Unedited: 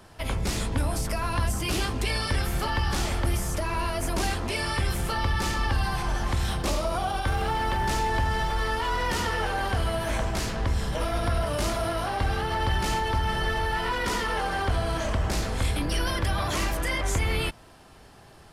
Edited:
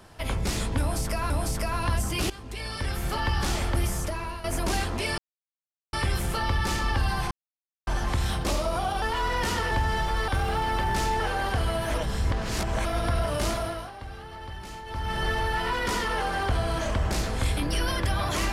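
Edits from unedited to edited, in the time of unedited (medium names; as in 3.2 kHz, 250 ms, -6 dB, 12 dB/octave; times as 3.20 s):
0.80–1.30 s: loop, 2 plays
1.80–2.77 s: fade in, from -17.5 dB
3.46–3.94 s: fade out, to -12 dB
4.68 s: insert silence 0.75 s
6.06 s: insert silence 0.56 s
7.21–8.13 s: swap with 8.70–9.39 s
10.13–11.04 s: reverse
11.71–13.44 s: dip -13.5 dB, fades 0.40 s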